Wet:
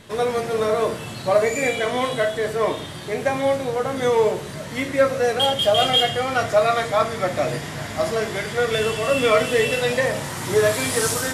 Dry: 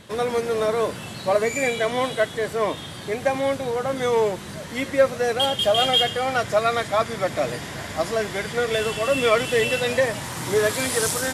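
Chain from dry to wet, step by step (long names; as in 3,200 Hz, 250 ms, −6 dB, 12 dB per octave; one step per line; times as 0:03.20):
rectangular room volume 52 cubic metres, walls mixed, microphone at 0.37 metres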